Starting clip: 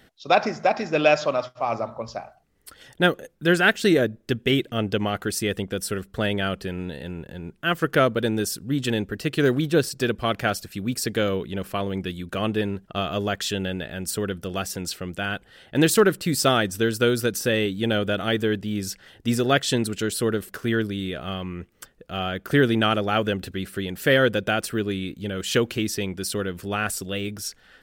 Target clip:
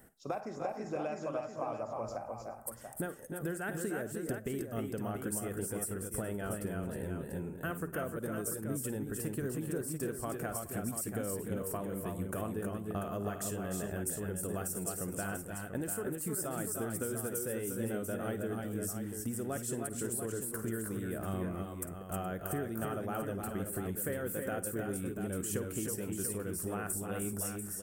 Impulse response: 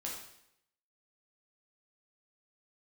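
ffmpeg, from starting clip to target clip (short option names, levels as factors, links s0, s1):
-filter_complex "[0:a]firequalizer=gain_entry='entry(1000,0);entry(3600,-19);entry(8300,10)':delay=0.05:min_phase=1,acompressor=threshold=0.0282:ratio=10,aecho=1:1:49|54|298|317|419|690:0.119|0.168|0.335|0.562|0.112|0.398,asplit=2[s0][s1];[1:a]atrim=start_sample=2205[s2];[s1][s2]afir=irnorm=-1:irlink=0,volume=0.0841[s3];[s0][s3]amix=inputs=2:normalize=0,volume=0.596"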